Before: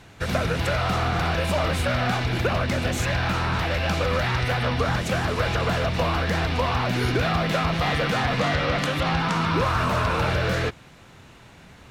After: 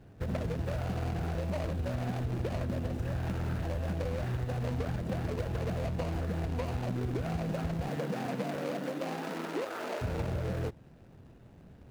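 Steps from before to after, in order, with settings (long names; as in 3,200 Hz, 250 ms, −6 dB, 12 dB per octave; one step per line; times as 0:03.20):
running median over 41 samples
0:07.88–0:10.01: high-pass filter 140 Hz → 350 Hz 24 dB per octave
downward compressor, threshold −26 dBFS, peak gain reduction 6.5 dB
level −3.5 dB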